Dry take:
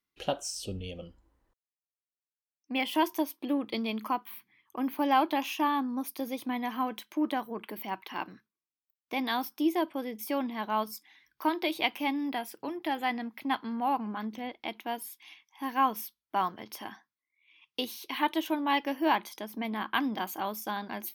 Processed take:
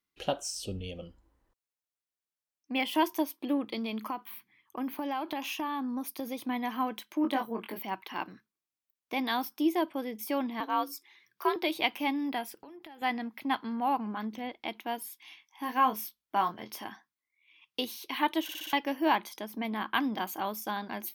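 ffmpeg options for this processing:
-filter_complex "[0:a]asettb=1/sr,asplit=3[a][b][c];[a]atrim=end=3.634[d];[b]atrim=start=3.63:end=6.38,asetpts=PTS-STARTPTS,afade=t=in:d=0.004:c=qsin,afade=t=out:st=2.746:d=0.004:c=qsin,acompressor=threshold=-30dB:ratio=5:attack=3.2:release=140:knee=1:detection=peak[e];[c]atrim=start=6.376[f];[d][e]acrossfade=d=0.004:c1=hsin:c2=qsin[g];[g][f]acrossfade=d=0.004:c1=qsin:c2=hsin,asettb=1/sr,asplit=3[h][i][j];[h]atrim=end=7.224[k];[i]atrim=start=7.22:end=7.79,asetpts=PTS-STARTPTS,afade=t=in:d=0.004:c=qsin,afade=t=out:st=0.566:d=0.004:c=qsin,asplit=2[l][m];[m]adelay=22,volume=-4dB[n];[l][n]amix=inputs=2:normalize=0,atrim=end_sample=25137[o];[j]atrim=start=7.786[p];[k][o]acrossfade=d=0.004:c1=hsin:c2=qsin[q];[q][p]acrossfade=d=0.004:c1=qsin:c2=hsin,asettb=1/sr,asplit=3[r][s][t];[r]atrim=end=10.604[u];[s]atrim=start=10.6:end=11.56,asetpts=PTS-STARTPTS,afade=t=in:d=0.004:c=qsin,afade=t=out:st=0.956:d=0.004:c=qsin,afreqshift=65[v];[t]atrim=start=11.556[w];[u][v]acrossfade=d=0.004:c1=hsin:c2=qsin[x];[x][w]acrossfade=d=0.004:c1=qsin:c2=hsin,asettb=1/sr,asplit=3[y][z][aa];[y]atrim=end=12.544[ab];[z]atrim=start=12.54:end=13.02,asetpts=PTS-STARTPTS,afade=t=in:d=0.004:c=qsin,afade=t=out:st=0.476:d=0.004:c=qsin,acompressor=threshold=-45dB:ratio=12:attack=3.2:release=140:knee=1:detection=peak[ac];[aa]atrim=start=13.016[ad];[ab][ac]acrossfade=d=0.004:c1=hsin:c2=qsin[ae];[ae][ad]acrossfade=d=0.004:c1=qsin:c2=hsin,asettb=1/sr,asplit=3[af][ag][ah];[af]atrim=end=15.194[ai];[ag]atrim=start=15.19:end=16.84,asetpts=PTS-STARTPTS,afade=t=in:d=0.004:c=qsin,afade=t=out:st=1.646:d=0.004:c=qsin,asplit=2[aj][ak];[ak]adelay=24,volume=-7.5dB[al];[aj][al]amix=inputs=2:normalize=0,atrim=end_sample=72765[am];[ah]atrim=start=16.836[an];[ai][am]acrossfade=d=0.004:c1=hsin:c2=qsin[ao];[ao][an]acrossfade=d=0.004:c1=qsin:c2=hsin,asplit=6[ap][aq][ar][as][at][au];[ap]atrim=end=18.492[av];[aq]atrim=start=18.428:end=18.492[aw];[ar]atrim=start=18.428:end=18.492[ax];[as]atrim=start=18.428:end=18.492[ay];[at]atrim=start=18.428:end=18.492[az];[au]atrim=start=18.728[ba];[av][aw]acrossfade=d=0.004:c1=hsin:c2=hsin[bb];[bb][ax]acrossfade=d=0.004:c1=hsin:c2=hsin[bc];[bc][ay]acrossfade=d=0.004:c1=hsin:c2=hsin[bd];[bd][az]acrossfade=d=0.004:c1=hsin:c2=hsin[be];[be][ba]acrossfade=d=0.004:c1=hsin:c2=hsin"

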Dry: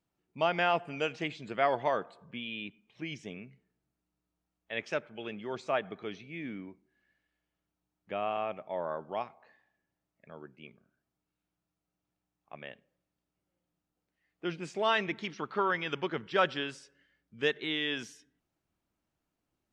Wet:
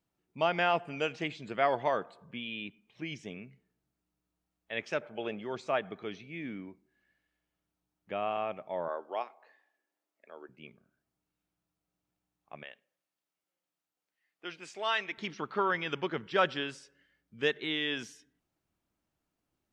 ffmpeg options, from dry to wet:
-filter_complex "[0:a]asettb=1/sr,asplit=3[a][b][c];[a]atrim=end=5.014[d];[b]atrim=start=5.01:end=5.44,asetpts=PTS-STARTPTS,afade=t=in:d=0.004:c=qsin,afade=t=out:st=0.426:d=0.004:c=qsin,equalizer=f=650:t=o:w=1.3:g=9[e];[c]atrim=start=5.436[f];[d][e]acrossfade=d=0.004:c1=hsin:c2=qsin[g];[g][f]acrossfade=d=0.004:c1=qsin:c2=hsin,asettb=1/sr,asplit=3[h][i][j];[h]atrim=end=8.884[k];[i]atrim=start=8.88:end=10.49,asetpts=PTS-STARTPTS,afade=t=in:d=0.004:c=qsin,afade=t=out:st=1.606:d=0.004:c=qsin,highpass=f=310:w=0.5412,highpass=f=310:w=1.3066[l];[j]atrim=start=10.486[m];[k][l]acrossfade=d=0.004:c1=hsin:c2=qsin[n];[n][m]acrossfade=d=0.004:c1=qsin:c2=hsin,asettb=1/sr,asplit=3[o][p][q];[o]atrim=end=12.634[r];[p]atrim=start=12.63:end=15.18,asetpts=PTS-STARTPTS,afade=t=in:d=0.004:c=qsin,afade=t=out:st=2.546:d=0.004:c=qsin,highpass=f=1.1k:p=1[s];[q]atrim=start=15.176[t];[r][s]acrossfade=d=0.004:c1=hsin:c2=qsin[u];[u][t]acrossfade=d=0.004:c1=qsin:c2=hsin"

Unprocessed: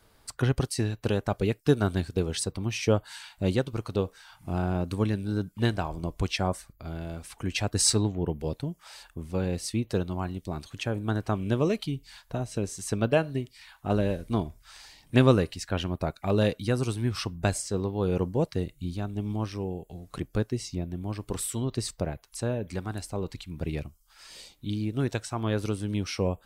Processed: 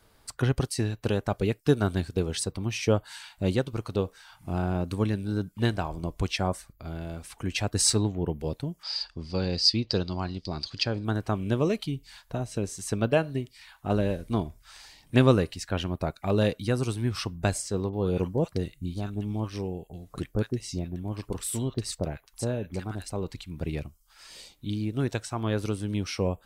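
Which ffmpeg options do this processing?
-filter_complex "[0:a]asettb=1/sr,asplit=3[a][b][c];[a]atrim=end=8.834[d];[b]atrim=start=8.83:end=11.05,asetpts=PTS-STARTPTS,afade=t=in:d=0.004:c=qsin,afade=t=out:st=2.216:d=0.004:c=qsin,lowpass=f=4.8k:t=q:w=15[e];[c]atrim=start=11.046[f];[d][e]acrossfade=d=0.004:c1=hsin:c2=qsin[g];[g][f]acrossfade=d=0.004:c1=qsin:c2=hsin,asettb=1/sr,asplit=3[h][i][j];[h]atrim=end=17.894[k];[i]atrim=start=17.89:end=23.1,asetpts=PTS-STARTPTS,afade=t=in:d=0.004:c=qsin,afade=t=out:st=5.206:d=0.004:c=qsin,acrossover=split=1200[l][m];[m]adelay=40[n];[l][n]amix=inputs=2:normalize=0,atrim=end_sample=229761[o];[j]atrim=start=23.096[p];[k][o]acrossfade=d=0.004:c1=hsin:c2=qsin[q];[q][p]acrossfade=d=0.004:c1=qsin:c2=hsin"

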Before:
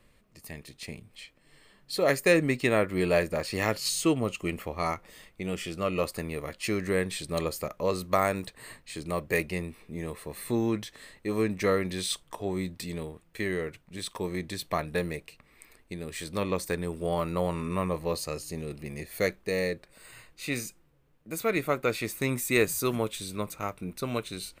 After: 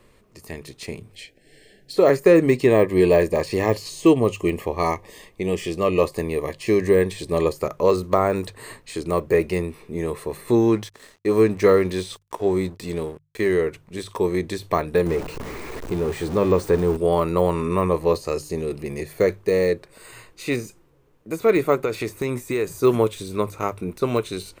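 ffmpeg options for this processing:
-filter_complex "[0:a]asplit=3[a][b][c];[a]afade=t=out:st=1.12:d=0.02[d];[b]asuperstop=centerf=1100:order=12:qfactor=1.5,afade=t=in:st=1.12:d=0.02,afade=t=out:st=1.95:d=0.02[e];[c]afade=t=in:st=1.95:d=0.02[f];[d][e][f]amix=inputs=3:normalize=0,asettb=1/sr,asplit=3[g][h][i];[g]atrim=end=2.464[j];[h]atrim=start=2.46:end=7.56,asetpts=PTS-STARTPTS,afade=t=in:d=0.004:c=qsin,afade=t=out:st=5.096:d=0.004:c=qsin,asuperstop=centerf=1400:order=12:qfactor=4.2[k];[i]atrim=start=7.556[l];[j][k]acrossfade=d=0.004:c1=hsin:c2=qsin[m];[m][l]acrossfade=d=0.004:c1=qsin:c2=hsin,asettb=1/sr,asplit=3[n][o][p];[n]atrim=end=10.614[q];[o]atrim=start=10.61:end=13.55,asetpts=PTS-STARTPTS,afade=t=in:d=0.004:c=qsin,afade=t=out:st=2.936:d=0.004:c=qsin,aeval=exprs='sgn(val(0))*max(abs(val(0))-0.00251,0)':c=same[r];[p]atrim=start=13.546[s];[q][r]acrossfade=d=0.004:c1=hsin:c2=qsin[t];[t][s]acrossfade=d=0.004:c1=qsin:c2=hsin,asettb=1/sr,asplit=3[u][v][w];[u]atrim=end=15.064[x];[v]atrim=start=15.06:end=16.97,asetpts=PTS-STARTPTS,afade=t=in:d=0.004:c=qsin,afade=t=out:st=1.906:d=0.004:c=qsin,aeval=exprs='val(0)+0.5*0.0266*sgn(val(0))':c=same[y];[w]atrim=start=16.966[z];[x][y]acrossfade=d=0.004:c1=hsin:c2=qsin[aa];[aa][z]acrossfade=d=0.004:c1=qsin:c2=hsin,asplit=3[ab][ac][ad];[ab]afade=t=out:st=21.75:d=0.02[ae];[ac]acompressor=threshold=-29dB:ratio=6:attack=3.2:release=140:knee=1:detection=peak,afade=t=in:st=21.75:d=0.02,afade=t=out:st=22.7:d=0.02[af];[ad]afade=t=in:st=22.7:d=0.02[ag];[ae][af][ag]amix=inputs=3:normalize=0,bandreject=f=50:t=h:w=6,bandreject=f=100:t=h:w=6,bandreject=f=150:t=h:w=6,deesser=0.95,equalizer=f=100:t=o:w=0.67:g=5,equalizer=f=400:t=o:w=0.67:g=9,equalizer=f=1k:t=o:w=0.67:g=5,equalizer=f=6.3k:t=o:w=0.67:g=3,volume=5dB"

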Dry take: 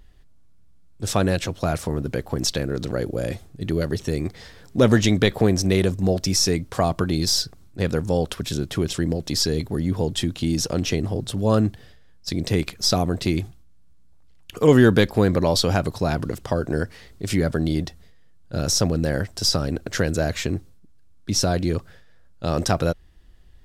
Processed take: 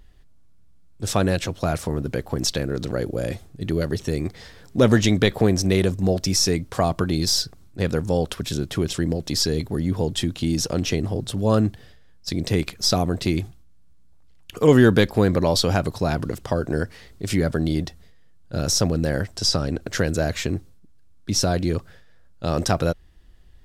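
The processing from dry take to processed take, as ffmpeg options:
-filter_complex "[0:a]asettb=1/sr,asplit=3[a][b][c];[a]atrim=end=19.364[d];[b]atrim=start=19.36:end=19.81,asetpts=PTS-STARTPTS,afade=t=in:d=0.004:c=qsin,afade=t=out:st=0.446:d=0.004:c=qsin,lowpass=9.8k[e];[c]atrim=start=19.806[f];[d][e]acrossfade=d=0.004:c1=hsin:c2=qsin[g];[g][f]acrossfade=d=0.004:c1=qsin:c2=hsin"

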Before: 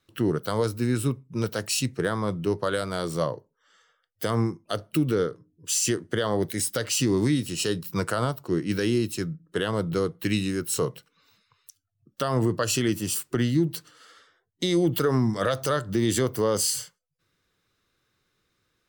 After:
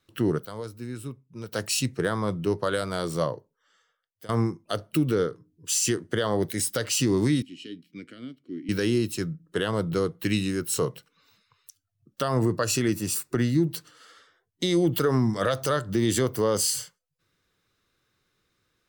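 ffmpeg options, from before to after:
-filter_complex "[0:a]asettb=1/sr,asplit=3[a][b][c];[a]atrim=end=5.304[d];[b]atrim=start=5.3:end=5.96,asetpts=PTS-STARTPTS,afade=t=in:d=0.004:c=qsin,afade=t=out:st=0.656:d=0.004:c=qsin,equalizer=f=580:w=7.5:g=-10[e];[c]atrim=start=5.956[f];[d][e]acrossfade=d=0.004:c1=hsin:c2=qsin[g];[g][f]acrossfade=d=0.004:c1=qsin:c2=hsin,asettb=1/sr,asplit=3[h][i][j];[h]atrim=end=7.424[k];[i]atrim=start=7.42:end=8.69,asetpts=PTS-STARTPTS,afade=t=in:d=0.004:c=qsin,afade=t=out:st=1.266:d=0.004:c=qsin,asplit=3[l][m][n];[l]bandpass=f=270:t=q:w=8,volume=0dB[o];[m]bandpass=f=2.29k:t=q:w=8,volume=-6dB[p];[n]bandpass=f=3.01k:t=q:w=8,volume=-9dB[q];[o][p][q]amix=inputs=3:normalize=0[r];[j]atrim=start=8.686[s];[k][r]acrossfade=d=0.004:c1=hsin:c2=qsin[t];[t][s]acrossfade=d=0.004:c1=qsin:c2=hsin,asettb=1/sr,asplit=3[u][v][w];[u]atrim=end=12.284[x];[v]atrim=start=12.28:end=13.68,asetpts=PTS-STARTPTS,afade=t=in:d=0.004:c=qsin,afade=t=out:st=1.396:d=0.004:c=qsin,bandreject=f=3.1k:w=5.5[y];[w]atrim=start=13.676[z];[x][y]acrossfade=d=0.004:c1=hsin:c2=qsin[aa];[aa][z]acrossfade=d=0.004:c1=qsin:c2=hsin,asplit=4[ab][ac][ad][ae];[ab]atrim=end=0.452[af];[ac]atrim=start=0.448:end=1.532,asetpts=PTS-STARTPTS,volume=-11dB[ag];[ad]atrim=start=1.528:end=4.29,asetpts=PTS-STARTPTS,afade=t=out:st=1.742:d=1.02:silence=0.112202[ah];[ae]atrim=start=4.29,asetpts=PTS-STARTPTS,afade=t=in:d=0.004:c=hsin:silence=0.112202[ai];[af][ag]acrossfade=d=0.004:c1=hsin:c2=hsin[aj];[ah][ai]concat=n=2:v=0:a=1[ak];[aj][ak]acrossfade=d=0.004:c1=hsin:c2=hsin"

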